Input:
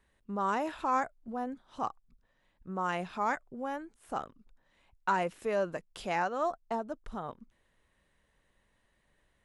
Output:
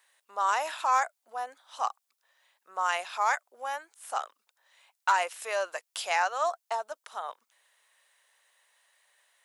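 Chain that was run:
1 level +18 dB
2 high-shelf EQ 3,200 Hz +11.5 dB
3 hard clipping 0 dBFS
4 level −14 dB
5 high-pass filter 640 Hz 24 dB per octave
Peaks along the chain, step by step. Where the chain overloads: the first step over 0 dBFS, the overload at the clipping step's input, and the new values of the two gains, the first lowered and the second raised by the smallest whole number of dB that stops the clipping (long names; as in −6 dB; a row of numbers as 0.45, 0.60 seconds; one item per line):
+2.0, +3.5, 0.0, −14.0, −11.0 dBFS
step 1, 3.5 dB
step 1 +14 dB, step 4 −10 dB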